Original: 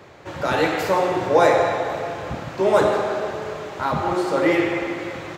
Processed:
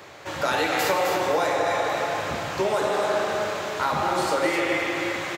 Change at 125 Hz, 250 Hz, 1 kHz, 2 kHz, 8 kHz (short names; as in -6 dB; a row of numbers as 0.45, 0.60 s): -6.0, -6.0, -1.5, +0.5, +5.0 dB